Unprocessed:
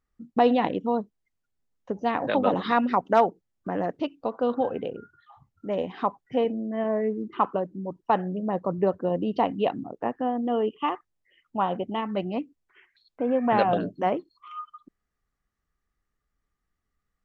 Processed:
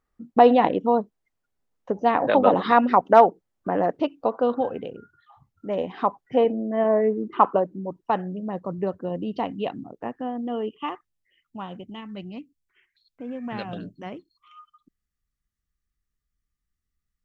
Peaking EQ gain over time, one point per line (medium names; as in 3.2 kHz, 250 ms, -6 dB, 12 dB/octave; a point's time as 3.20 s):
peaking EQ 710 Hz 2.7 oct
4.29 s +6.5 dB
4.91 s -4 dB
6.58 s +7 dB
7.57 s +7 dB
8.37 s -4.5 dB
10.93 s -4.5 dB
11.82 s -15 dB